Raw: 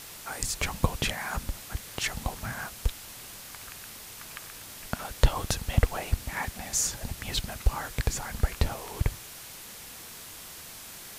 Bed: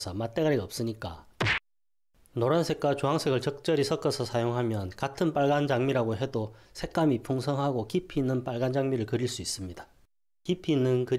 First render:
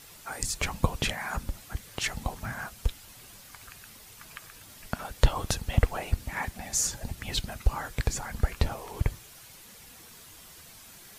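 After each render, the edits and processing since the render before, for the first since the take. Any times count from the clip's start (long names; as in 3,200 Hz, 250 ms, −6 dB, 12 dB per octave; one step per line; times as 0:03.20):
broadband denoise 8 dB, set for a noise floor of −45 dBFS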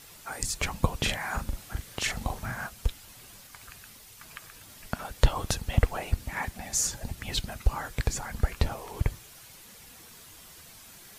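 0:01.01–0:02.67: double-tracking delay 41 ms −5 dB
0:03.47–0:04.28: multiband upward and downward expander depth 40%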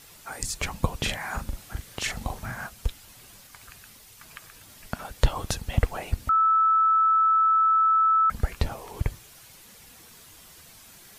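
0:06.29–0:08.30: beep over 1,310 Hz −17 dBFS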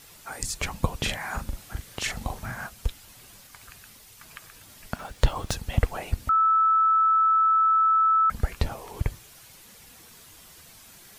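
0:04.96–0:05.55: running median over 3 samples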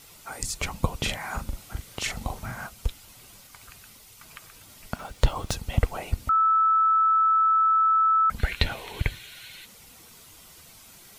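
0:08.39–0:09.65: gain on a spectral selection 1,400–4,400 Hz +12 dB
notch filter 1,700 Hz, Q 9.6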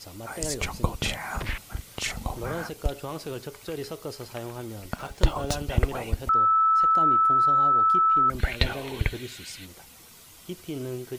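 mix in bed −8.5 dB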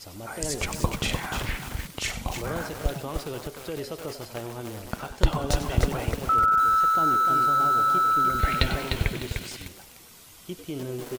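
echo with shifted repeats 95 ms, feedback 34%, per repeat +110 Hz, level −12 dB
feedback echo at a low word length 301 ms, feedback 35%, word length 6 bits, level −5 dB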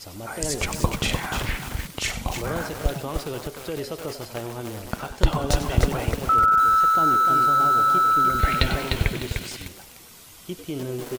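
level +3 dB
brickwall limiter −1 dBFS, peak gain reduction 1.5 dB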